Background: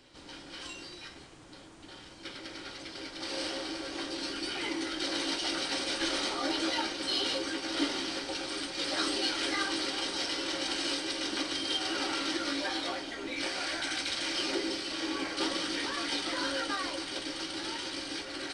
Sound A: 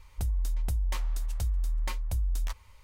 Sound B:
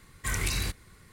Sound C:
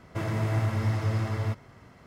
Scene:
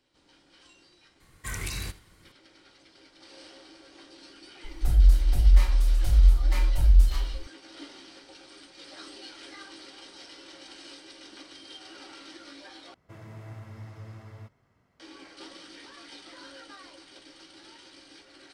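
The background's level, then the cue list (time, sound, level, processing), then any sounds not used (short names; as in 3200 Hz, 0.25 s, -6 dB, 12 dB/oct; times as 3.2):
background -14 dB
1.2 add B -4.5 dB + echo 80 ms -18 dB
4.64 add A -12 dB + shoebox room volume 76 m³, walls mixed, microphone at 4 m
12.94 replace with C -16.5 dB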